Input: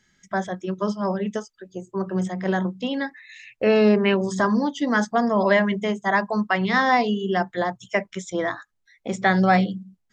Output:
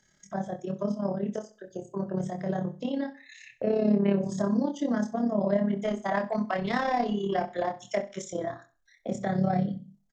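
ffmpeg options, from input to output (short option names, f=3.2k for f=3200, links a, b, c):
-filter_complex "[0:a]equalizer=f=630:t=o:w=0.67:g=11,equalizer=f=2.5k:t=o:w=0.67:g=-4,equalizer=f=6.3k:t=o:w=0.67:g=5,acrossover=split=320[a][b];[b]acompressor=threshold=-36dB:ratio=2.5[c];[a][c]amix=inputs=2:normalize=0,tremolo=f=34:d=0.667,asplit=3[d][e][f];[d]afade=t=out:st=5.71:d=0.02[g];[e]asplit=2[h][i];[i]highpass=f=720:p=1,volume=13dB,asoftclip=type=tanh:threshold=-15.5dB[j];[h][j]amix=inputs=2:normalize=0,lowpass=f=6.4k:p=1,volume=-6dB,afade=t=in:st=5.71:d=0.02,afade=t=out:st=8.23:d=0.02[k];[f]afade=t=in:st=8.23:d=0.02[l];[g][k][l]amix=inputs=3:normalize=0,asplit=2[m][n];[n]adelay=25,volume=-5dB[o];[m][o]amix=inputs=2:normalize=0,aecho=1:1:66|132|198:0.158|0.0475|0.0143,volume=-2dB"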